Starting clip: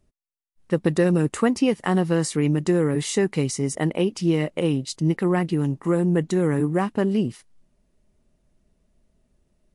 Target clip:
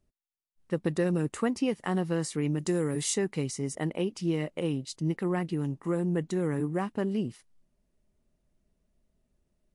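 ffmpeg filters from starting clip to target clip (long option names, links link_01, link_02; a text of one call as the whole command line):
ffmpeg -i in.wav -filter_complex "[0:a]asettb=1/sr,asplit=3[link_01][link_02][link_03];[link_01]atrim=end=2.594[link_04];[link_02]atrim=start=2.59:end=3.14,asetpts=PTS-STARTPTS,afade=type=in:duration=0.004:curve=qsin,afade=type=out:start_time=0.546:duration=0.004:curve=qsin,bass=frequency=250:gain=0,treble=frequency=4000:gain=9[link_05];[link_03]atrim=start=3.136[link_06];[link_04][link_05]acrossfade=duration=0.004:curve1=hsin:curve2=qsin[link_07];[link_07][link_06]acrossfade=duration=0.004:curve1=qsin:curve2=hsin,volume=-8dB" out.wav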